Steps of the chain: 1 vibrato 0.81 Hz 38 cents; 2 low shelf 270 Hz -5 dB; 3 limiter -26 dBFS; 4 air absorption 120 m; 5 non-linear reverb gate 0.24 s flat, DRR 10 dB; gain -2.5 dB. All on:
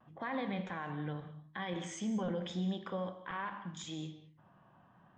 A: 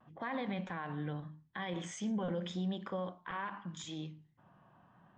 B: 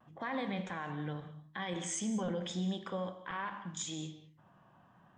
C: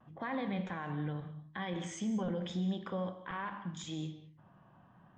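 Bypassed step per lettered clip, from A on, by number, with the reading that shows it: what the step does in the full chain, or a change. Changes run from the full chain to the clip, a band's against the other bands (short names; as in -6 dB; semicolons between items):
5, crest factor change -1.5 dB; 4, 8 kHz band +9.0 dB; 2, 125 Hz band +2.5 dB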